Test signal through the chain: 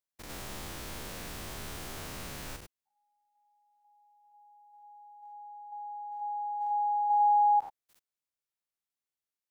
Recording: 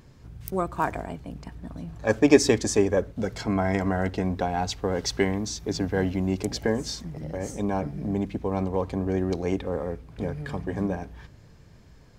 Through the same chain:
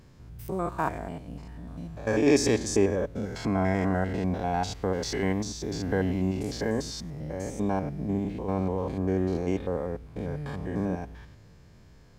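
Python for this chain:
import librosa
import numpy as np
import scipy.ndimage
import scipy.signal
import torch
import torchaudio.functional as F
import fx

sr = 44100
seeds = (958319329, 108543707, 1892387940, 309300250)

y = fx.spec_steps(x, sr, hold_ms=100)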